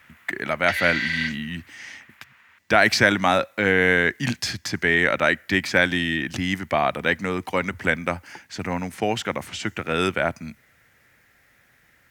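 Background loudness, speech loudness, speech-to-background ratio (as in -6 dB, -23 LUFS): -25.5 LUFS, -22.5 LUFS, 3.0 dB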